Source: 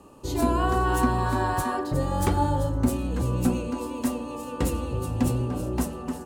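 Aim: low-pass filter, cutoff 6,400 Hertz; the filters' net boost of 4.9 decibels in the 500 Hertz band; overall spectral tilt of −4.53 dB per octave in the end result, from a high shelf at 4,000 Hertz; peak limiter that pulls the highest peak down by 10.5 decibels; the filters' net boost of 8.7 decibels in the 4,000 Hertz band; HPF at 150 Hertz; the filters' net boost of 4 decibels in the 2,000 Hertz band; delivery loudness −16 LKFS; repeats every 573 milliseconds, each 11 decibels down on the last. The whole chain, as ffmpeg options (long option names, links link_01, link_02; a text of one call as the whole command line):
ffmpeg -i in.wav -af "highpass=150,lowpass=6400,equalizer=frequency=500:width_type=o:gain=6,equalizer=frequency=2000:width_type=o:gain=3,highshelf=frequency=4000:gain=3.5,equalizer=frequency=4000:width_type=o:gain=8.5,alimiter=limit=-19dB:level=0:latency=1,aecho=1:1:573|1146|1719:0.282|0.0789|0.0221,volume=12dB" out.wav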